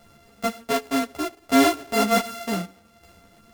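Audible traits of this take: a buzz of ramps at a fixed pitch in blocks of 64 samples; tremolo saw down 0.66 Hz, depth 60%; a shimmering, thickened sound

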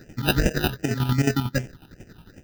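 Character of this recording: aliases and images of a low sample rate 1100 Hz, jitter 0%; phasing stages 6, 2.6 Hz, lowest notch 520–1100 Hz; chopped level 11 Hz, depth 60%, duty 40%

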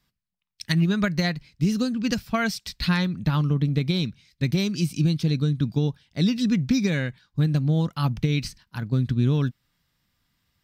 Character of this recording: noise floor -76 dBFS; spectral tilt -6.0 dB/oct

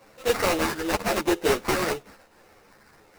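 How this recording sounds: a buzz of ramps at a fixed pitch in blocks of 8 samples; phasing stages 4, 0.97 Hz, lowest notch 710–4800 Hz; aliases and images of a low sample rate 3300 Hz, jitter 20%; a shimmering, thickened sound

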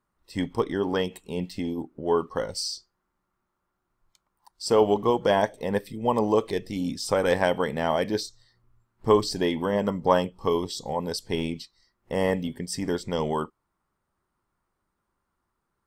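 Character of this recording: noise floor -80 dBFS; spectral tilt -4.5 dB/oct

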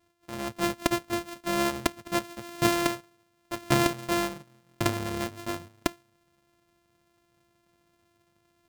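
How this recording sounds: a buzz of ramps at a fixed pitch in blocks of 128 samples

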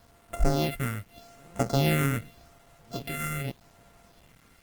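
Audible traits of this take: a buzz of ramps at a fixed pitch in blocks of 64 samples; phasing stages 4, 0.84 Hz, lowest notch 720–4500 Hz; a quantiser's noise floor 10-bit, dither none; Opus

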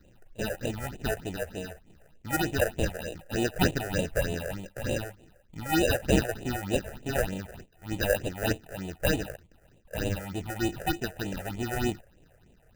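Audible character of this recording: aliases and images of a low sample rate 1100 Hz, jitter 0%; phasing stages 6, 3.3 Hz, lowest notch 250–1500 Hz

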